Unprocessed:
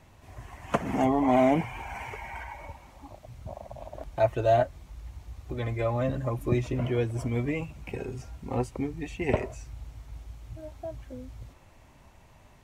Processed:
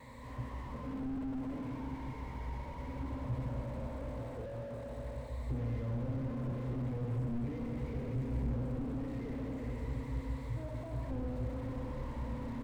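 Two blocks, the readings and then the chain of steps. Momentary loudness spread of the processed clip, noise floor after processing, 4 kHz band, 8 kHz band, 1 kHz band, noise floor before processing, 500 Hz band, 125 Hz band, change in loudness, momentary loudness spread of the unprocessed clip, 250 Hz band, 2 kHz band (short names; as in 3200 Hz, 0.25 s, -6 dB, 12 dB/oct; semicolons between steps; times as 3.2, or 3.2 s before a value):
7 LU, -45 dBFS, under -10 dB, under -10 dB, -16.0 dB, -55 dBFS, -14.5 dB, -4.0 dB, -10.5 dB, 21 LU, -7.5 dB, -14.0 dB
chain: in parallel at -6 dB: sample-rate reducer 8700 Hz; on the sum: vocal rider 0.5 s; on a send: feedback echo 64 ms, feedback 55%, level -9.5 dB; on the sum: vibrato 0.47 Hz 7.8 cents; low shelf 76 Hz -8 dB; compressor 10:1, threshold -37 dBFS, peak gain reduction 22 dB; ripple EQ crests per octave 1, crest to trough 17 dB; Schroeder reverb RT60 3.8 s, combs from 30 ms, DRR 0 dB; slew limiter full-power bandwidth 3.5 Hz; gain +1 dB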